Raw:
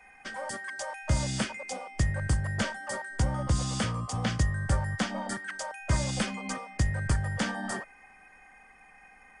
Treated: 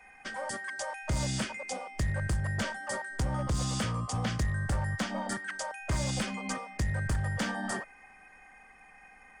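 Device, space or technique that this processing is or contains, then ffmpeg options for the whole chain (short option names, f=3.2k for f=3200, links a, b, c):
limiter into clipper: -af "alimiter=limit=-19.5dB:level=0:latency=1:release=113,asoftclip=type=hard:threshold=-24.5dB"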